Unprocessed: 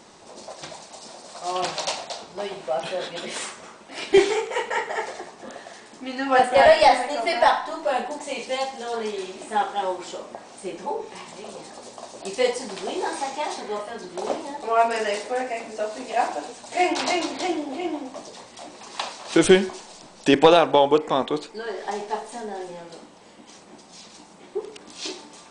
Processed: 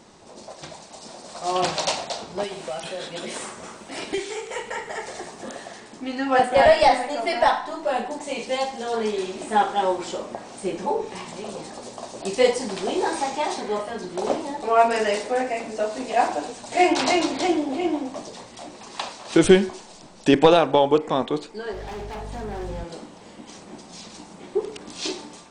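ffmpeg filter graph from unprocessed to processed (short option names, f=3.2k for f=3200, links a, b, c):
-filter_complex "[0:a]asettb=1/sr,asplit=3[a][b][c];[a]atrim=end=2.434[d];[b]atrim=start=2.43:end=5.67,asetpts=PTS-STARTPTS,afade=t=in:d=0.004:c=qsin,afade=t=out:st=3.236:d=0.004:c=qsin,highshelf=f=8.3k:g=12,acrossover=split=180|1500[e][f][g];[e]acompressor=threshold=-57dB:ratio=4[h];[f]acompressor=threshold=-36dB:ratio=4[i];[g]acompressor=threshold=-39dB:ratio=4[j];[h][i][j]amix=inputs=3:normalize=0[k];[c]atrim=start=5.666[l];[d][k]acrossfade=d=0.004:c1=hsin:c2=qsin[m];[m][l]acrossfade=d=0.004:c1=qsin:c2=hsin,asettb=1/sr,asplit=3[n][o][p];[n]atrim=end=21.734[q];[o]atrim=start=21.73:end=22.84,asetpts=PTS-STARTPTS,afade=t=in:d=0.004:c=qsin,afade=t=out:st=1.106:d=0.004:c=qsin,aeval=exprs='val(0)+0.01*(sin(2*PI*50*n/s)+sin(2*PI*2*50*n/s)/2+sin(2*PI*3*50*n/s)/3+sin(2*PI*4*50*n/s)/4+sin(2*PI*5*50*n/s)/5)':c=same,acrossover=split=5700[r][s];[s]acompressor=threshold=-57dB:ratio=4:attack=1:release=60[t];[r][t]amix=inputs=2:normalize=0,asoftclip=type=hard:threshold=-32dB[u];[p]atrim=start=22.836[v];[q][u]acrossfade=d=0.004:c1=hsin:c2=qsin[w];[w][v]acrossfade=d=0.004:c1=qsin:c2=hsin,dynaudnorm=f=790:g=3:m=6dB,lowshelf=f=270:g=7.5,volume=-3dB"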